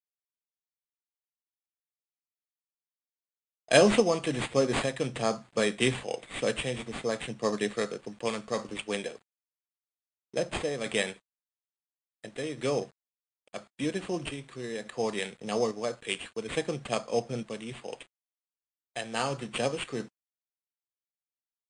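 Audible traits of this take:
aliases and images of a low sample rate 5,700 Hz, jitter 0%
sample-and-hold tremolo 3.5 Hz
a quantiser's noise floor 10 bits, dither none
MP3

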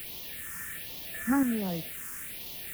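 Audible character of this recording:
sample-and-hold tremolo, depth 75%
a quantiser's noise floor 8 bits, dither triangular
phaser sweep stages 4, 1.3 Hz, lowest notch 650–1,500 Hz

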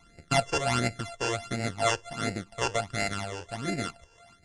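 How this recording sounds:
a buzz of ramps at a fixed pitch in blocks of 64 samples
phaser sweep stages 12, 1.4 Hz, lowest notch 210–1,100 Hz
Ogg Vorbis

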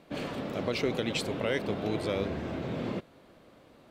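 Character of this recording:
background noise floor −58 dBFS
spectral slope −4.5 dB per octave

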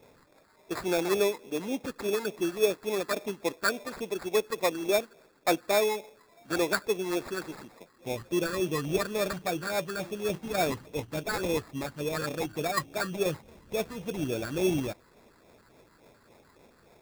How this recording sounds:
phaser sweep stages 12, 3.5 Hz, lowest notch 590–2,400 Hz
aliases and images of a low sample rate 3,000 Hz, jitter 0%

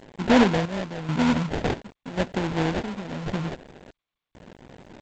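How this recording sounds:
aliases and images of a low sample rate 1,200 Hz, jitter 20%
chopped level 0.92 Hz, depth 65%, duty 60%
a quantiser's noise floor 8 bits, dither none
G.722

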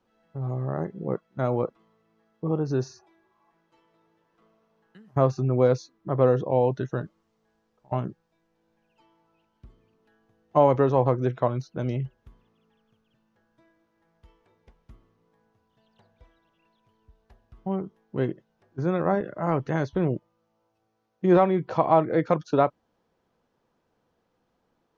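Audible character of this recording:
background noise floor −74 dBFS
spectral slope −6.0 dB per octave

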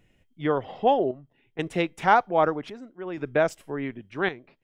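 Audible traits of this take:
chopped level 0.63 Hz, depth 65%, duty 70%

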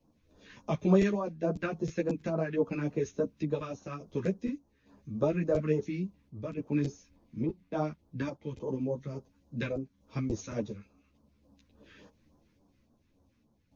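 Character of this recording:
phaser sweep stages 2, 3.5 Hz, lowest notch 670–2,200 Hz
sample-and-hold tremolo
a shimmering, thickened sound

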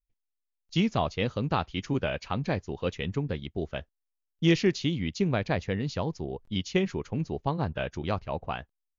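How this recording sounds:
background noise floor −84 dBFS
spectral slope −5.5 dB per octave

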